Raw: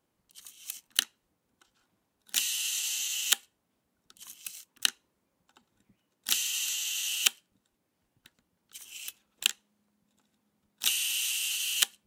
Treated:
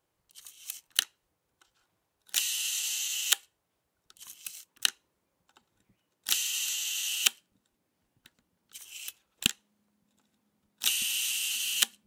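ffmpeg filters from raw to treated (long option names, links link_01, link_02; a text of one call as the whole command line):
ffmpeg -i in.wav -af "asetnsamples=nb_out_samples=441:pad=0,asendcmd='4.27 equalizer g -6;6.64 equalizer g 0.5;8.77 equalizer g -9.5;9.46 equalizer g 0.5;11.02 equalizer g 8.5',equalizer=frequency=230:width_type=o:width=0.59:gain=-12.5" out.wav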